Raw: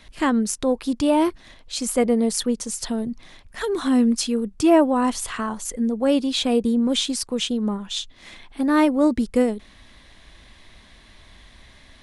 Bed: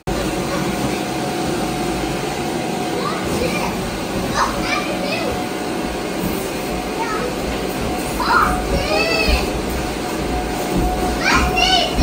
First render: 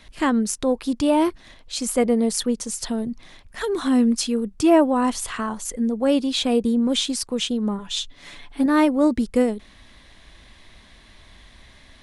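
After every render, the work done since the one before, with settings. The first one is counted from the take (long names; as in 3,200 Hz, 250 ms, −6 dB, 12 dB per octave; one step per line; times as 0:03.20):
0:07.78–0:08.66: comb filter 7 ms, depth 68%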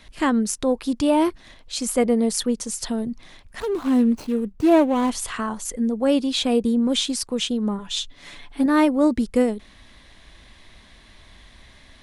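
0:03.60–0:05.10: running median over 25 samples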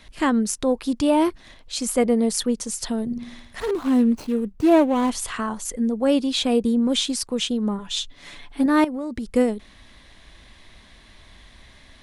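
0:03.05–0:03.71: flutter between parallel walls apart 9.3 metres, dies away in 0.75 s
0:08.84–0:09.28: downward compressor 10 to 1, threshold −25 dBFS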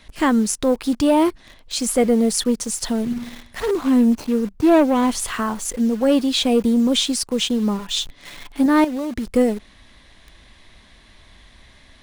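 in parallel at −5 dB: bit reduction 6 bits
on the sum: soft clipping −6.5 dBFS, distortion −20 dB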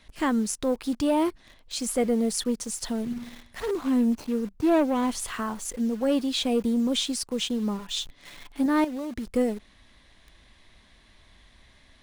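level −7.5 dB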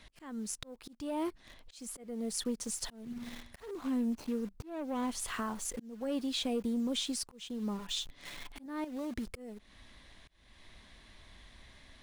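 downward compressor 2 to 1, threshold −38 dBFS, peak gain reduction 11 dB
volume swells 380 ms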